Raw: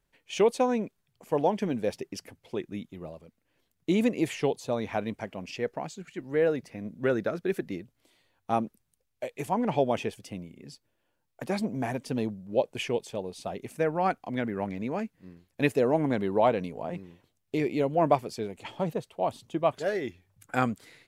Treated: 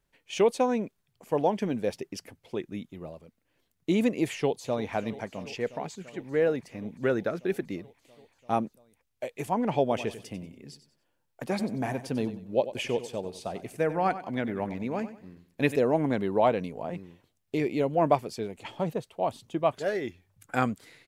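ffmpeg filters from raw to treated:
-filter_complex "[0:a]asplit=2[a][b];[b]afade=t=in:st=4.3:d=0.01,afade=t=out:st=4.93:d=0.01,aecho=0:1:340|680|1020|1360|1700|2040|2380|2720|3060|3400|3740|4080:0.141254|0.120066|0.102056|0.0867475|0.0737353|0.062675|0.0532738|0.0452827|0.0384903|0.0327168|0.0278092|0.0236379[c];[a][c]amix=inputs=2:normalize=0,asettb=1/sr,asplit=3[d][e][f];[d]atrim=end=9.824[g];[e]atrim=start=9.82:end=15.76,asetpts=PTS-STARTPTS,afade=t=in:d=0.004:c=qsin,afade=t=out:st=5.936:d=0.004:c=qsin,aecho=1:1:94|188|282:0.224|0.0716|0.0229,atrim=end_sample=261954[h];[f]atrim=start=15.756[i];[g][h]acrossfade=d=0.004:c1=hsin:c2=qsin[j];[j][i]acrossfade=d=0.004:c1=qsin:c2=hsin"

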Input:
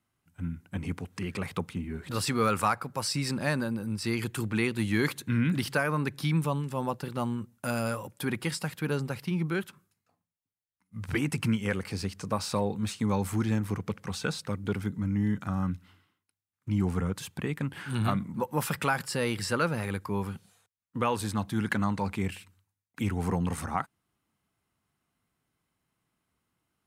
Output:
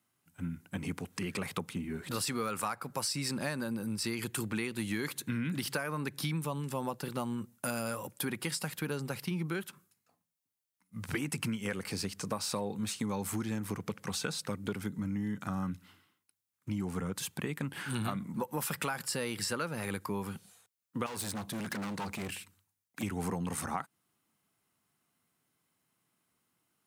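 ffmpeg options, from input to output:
-filter_complex "[0:a]asettb=1/sr,asplit=3[a][b][c];[a]atrim=end=21.064[d];[b]atrim=start=21.06:end=23.03,asetpts=PTS-STARTPTS,afade=t=in:d=0.004:c=qsin,afade=t=out:st=1.966:d=0.004:c=qsin,volume=34dB,asoftclip=hard,volume=-34dB[e];[c]atrim=start=23.026[f];[d][e]acrossfade=d=0.004:c1=hsin:c2=qsin[g];[g][f]acrossfade=d=0.004:c1=qsin:c2=hsin,highpass=130,highshelf=f=5.5k:g=7.5,acompressor=threshold=-31dB:ratio=6"

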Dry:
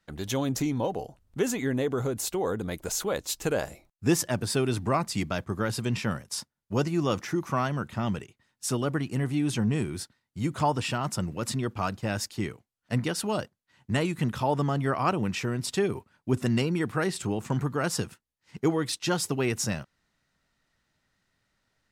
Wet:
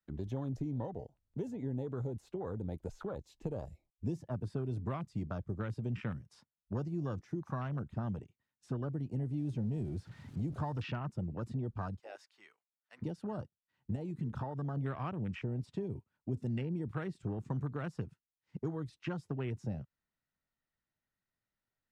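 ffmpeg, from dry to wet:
-filter_complex "[0:a]asettb=1/sr,asplit=3[a][b][c];[a]atrim=end=3.204[d];[b]atrim=start=3.2:end=4.2,asetpts=PTS-STARTPTS,afade=t=in:d=0.004:c=qsin,afade=t=out:st=0.996:d=0.004:c=qsin,equalizer=f=1.4k:w=2.6:g=-9.5[e];[c]atrim=start=4.196[f];[d][e]acrossfade=d=0.004:c1=hsin:c2=qsin[g];[g][f]acrossfade=d=0.004:c1=qsin:c2=hsin,asettb=1/sr,asplit=3[h][i][j];[h]atrim=end=9.384[k];[i]atrim=start=9.38:end=10.99,asetpts=PTS-STARTPTS,afade=t=in:d=0.004:c=qsin,afade=t=out:st=1.606:d=0.004:c=qsin,aeval=exprs='val(0)+0.5*0.0188*sgn(val(0))':c=same[l];[j]atrim=start=10.986[m];[k][l]acrossfade=d=0.004:c1=hsin:c2=qsin[n];[n][m]acrossfade=d=0.004:c1=qsin:c2=hsin,asettb=1/sr,asplit=3[o][p][q];[o]atrim=end=11.994[r];[p]atrim=start=11.99:end=13.02,asetpts=PTS-STARTPTS,afade=t=in:d=0.004:c=qsin,afade=t=out:st=1.026:d=0.004:c=qsin,highpass=990[s];[q]atrim=start=13.016[t];[r][s]acrossfade=d=0.004:c1=hsin:c2=qsin[u];[u][t]acrossfade=d=0.004:c1=qsin:c2=hsin,asettb=1/sr,asplit=3[v][w][x];[v]atrim=end=13.954[y];[w]atrim=start=13.95:end=14.77,asetpts=PTS-STARTPTS,afade=t=in:d=0.004:c=qsin,afade=t=out:st=0.816:d=0.004:c=qsin,acompressor=threshold=-29dB:ratio=2.5:attack=3.2:release=140:knee=1:detection=peak[z];[x]atrim=start=14.766[aa];[y][z]acrossfade=d=0.004:c1=hsin:c2=qsin[ab];[ab][aa]acrossfade=d=0.004:c1=qsin:c2=hsin,afwtdn=0.0224,acrossover=split=140|3800[ac][ad][ae];[ac]acompressor=threshold=-37dB:ratio=4[af];[ad]acompressor=threshold=-40dB:ratio=4[ag];[ae]acompressor=threshold=-59dB:ratio=4[ah];[af][ag][ah]amix=inputs=3:normalize=0,aemphasis=mode=reproduction:type=50fm,volume=-1dB"

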